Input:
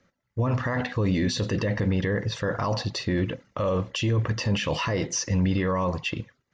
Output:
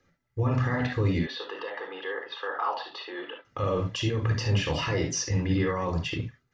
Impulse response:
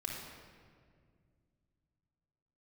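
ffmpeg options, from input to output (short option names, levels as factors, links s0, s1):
-filter_complex "[0:a]asettb=1/sr,asplit=3[s0][s1][s2];[s0]atrim=end=1.194[s3];[s1]atrim=start=1.19:end=3.45,asetpts=PTS-STARTPTS,afade=t=in:d=0.004:c=qsin,afade=t=out:st=2.256:d=0.004:c=qsin,highpass=f=480:w=0.5412,highpass=f=480:w=1.3066,equalizer=f=590:t=q:w=4:g=-7,equalizer=f=850:t=q:w=4:g=5,equalizer=f=1200:t=q:w=4:g=5,equalizer=f=2200:t=q:w=4:g=-9,equalizer=f=3200:t=q:w=4:g=5,lowpass=f=3500:w=0.5412,lowpass=f=3500:w=1.3066[s4];[s2]atrim=start=3.446[s5];[s3][s4]acrossfade=d=0.004:c1=hsin:c2=qsin[s6];[s6][s5]acrossfade=d=0.004:c1=qsin:c2=hsin[s7];[1:a]atrim=start_sample=2205,atrim=end_sample=3528[s8];[s7][s8]afir=irnorm=-1:irlink=0"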